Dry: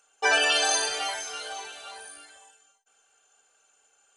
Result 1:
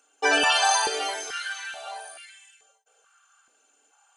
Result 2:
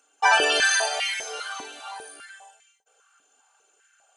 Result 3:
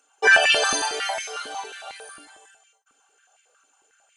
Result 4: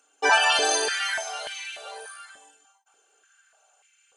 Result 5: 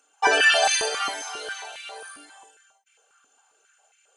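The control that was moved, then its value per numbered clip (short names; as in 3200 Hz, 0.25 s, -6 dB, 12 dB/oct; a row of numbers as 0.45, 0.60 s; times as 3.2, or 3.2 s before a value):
stepped high-pass, rate: 2.3, 5, 11, 3.4, 7.4 Hz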